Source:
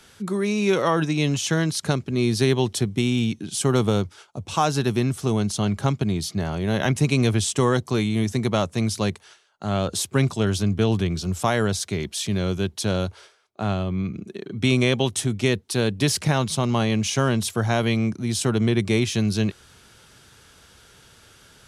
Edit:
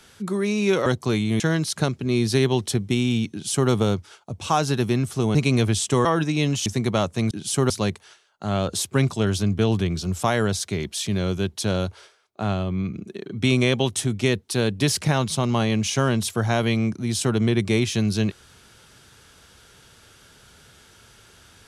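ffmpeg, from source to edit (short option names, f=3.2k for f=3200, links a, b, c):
-filter_complex "[0:a]asplit=8[a][b][c][d][e][f][g][h];[a]atrim=end=0.862[i];[b]atrim=start=7.708:end=8.252[j];[c]atrim=start=1.468:end=5.422[k];[d]atrim=start=7.008:end=7.712[l];[e]atrim=start=0.858:end=1.472[m];[f]atrim=start=8.248:end=8.902[n];[g]atrim=start=3.378:end=3.772[o];[h]atrim=start=8.898[p];[i][j]acrossfade=d=0.004:c1=hsin:c2=hsin[q];[q][k]acrossfade=d=0.004:c1=hsin:c2=hsin[r];[r][l]acrossfade=d=0.004:c1=hsin:c2=hsin[s];[s][m]acrossfade=d=0.004:c1=hsin:c2=hsin[t];[t][n]acrossfade=d=0.004:c1=hsin:c2=hsin[u];[u][o]acrossfade=d=0.004:c1=hsin:c2=hsin[v];[v][p]acrossfade=d=0.004:c1=hsin:c2=hsin"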